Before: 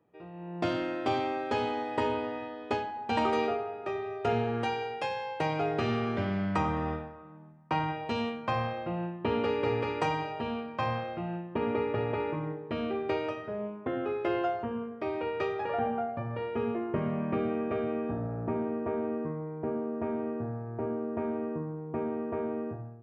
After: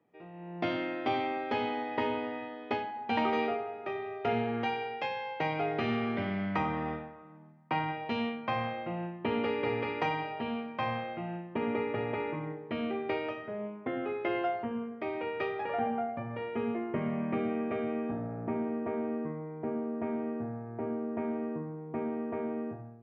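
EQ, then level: air absorption 85 m; speaker cabinet 110–6000 Hz, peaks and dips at 240 Hz +4 dB, 750 Hz +3 dB, 2100 Hz +9 dB, 3200 Hz +4 dB; -3.0 dB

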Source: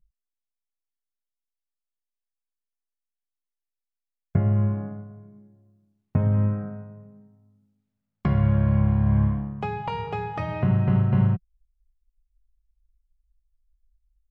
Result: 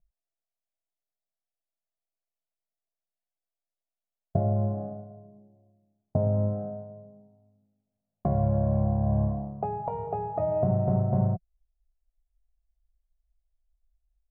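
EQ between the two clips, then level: synth low-pass 670 Hz, resonance Q 6.8; -5.5 dB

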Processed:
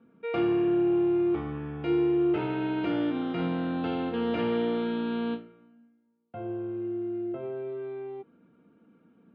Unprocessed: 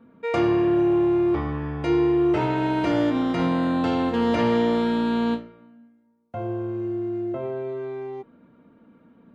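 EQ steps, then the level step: speaker cabinet 120–3300 Hz, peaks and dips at 120 Hz -5 dB, 250 Hz -5 dB, 590 Hz -9 dB, 1000 Hz -10 dB, 1900 Hz -8 dB; -3.0 dB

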